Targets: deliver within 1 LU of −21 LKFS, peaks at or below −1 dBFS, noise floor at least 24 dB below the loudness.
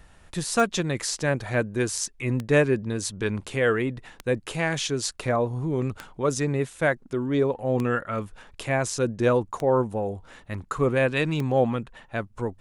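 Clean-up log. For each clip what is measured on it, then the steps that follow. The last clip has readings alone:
number of clicks 7; integrated loudness −26.0 LKFS; sample peak −8.0 dBFS; target loudness −21.0 LKFS
→ click removal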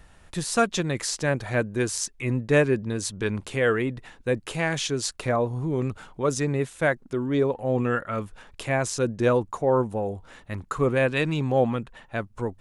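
number of clicks 0; integrated loudness −26.0 LKFS; sample peak −8.0 dBFS; target loudness −21.0 LKFS
→ level +5 dB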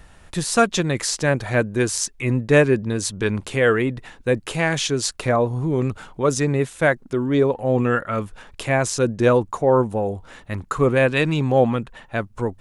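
integrated loudness −21.0 LKFS; sample peak −3.0 dBFS; background noise floor −49 dBFS

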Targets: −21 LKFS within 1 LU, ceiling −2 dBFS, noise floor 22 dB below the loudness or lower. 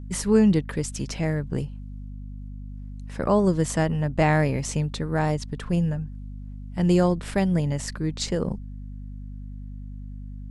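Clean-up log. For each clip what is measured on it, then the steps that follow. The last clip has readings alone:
mains hum 50 Hz; hum harmonics up to 250 Hz; level of the hum −35 dBFS; integrated loudness −24.5 LKFS; sample peak −6.5 dBFS; target loudness −21.0 LKFS
→ mains-hum notches 50/100/150/200/250 Hz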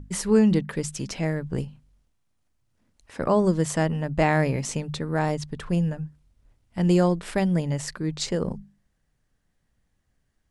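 mains hum none found; integrated loudness −25.0 LKFS; sample peak −8.0 dBFS; target loudness −21.0 LKFS
→ level +4 dB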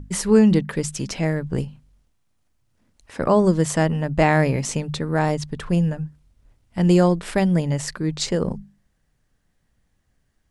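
integrated loudness −21.0 LKFS; sample peak −4.0 dBFS; background noise floor −69 dBFS

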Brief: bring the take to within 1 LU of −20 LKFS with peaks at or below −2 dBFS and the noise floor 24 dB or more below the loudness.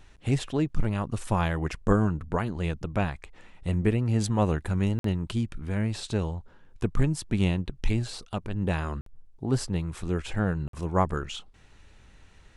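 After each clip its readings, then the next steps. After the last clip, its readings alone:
number of dropouts 3; longest dropout 53 ms; integrated loudness −29.0 LKFS; sample peak −10.0 dBFS; target loudness −20.0 LKFS
→ repair the gap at 0:04.99/0:09.01/0:10.68, 53 ms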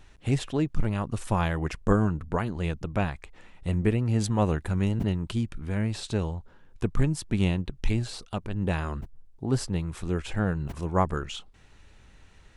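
number of dropouts 0; integrated loudness −29.0 LKFS; sample peak −10.0 dBFS; target loudness −20.0 LKFS
→ level +9 dB
brickwall limiter −2 dBFS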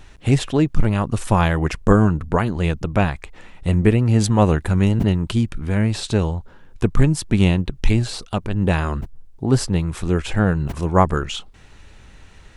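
integrated loudness −20.0 LKFS; sample peak −2.0 dBFS; background noise floor −46 dBFS

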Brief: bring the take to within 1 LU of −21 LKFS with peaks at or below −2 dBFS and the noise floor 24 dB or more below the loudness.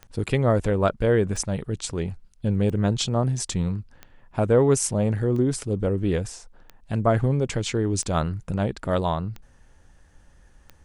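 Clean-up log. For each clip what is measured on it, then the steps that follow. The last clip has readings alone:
number of clicks 9; integrated loudness −24.5 LKFS; sample peak −8.0 dBFS; target loudness −21.0 LKFS
→ click removal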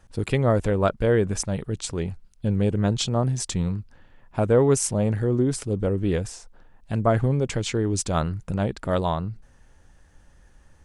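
number of clicks 0; integrated loudness −24.5 LKFS; sample peak −8.0 dBFS; target loudness −21.0 LKFS
→ level +3.5 dB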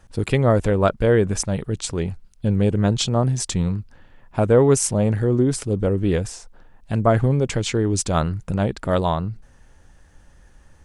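integrated loudness −21.0 LKFS; sample peak −4.5 dBFS; background noise floor −52 dBFS

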